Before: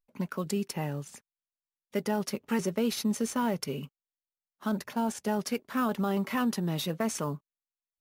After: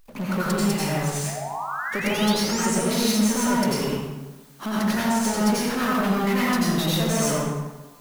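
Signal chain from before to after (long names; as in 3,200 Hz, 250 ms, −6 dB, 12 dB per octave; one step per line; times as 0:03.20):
downward compressor, threshold −31 dBFS, peak gain reduction 7.5 dB
power curve on the samples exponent 0.5
sound drawn into the spectrogram rise, 0:01.26–0:02.74, 610–10,000 Hz −38 dBFS
dense smooth reverb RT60 1.2 s, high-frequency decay 0.65×, pre-delay 75 ms, DRR −7 dB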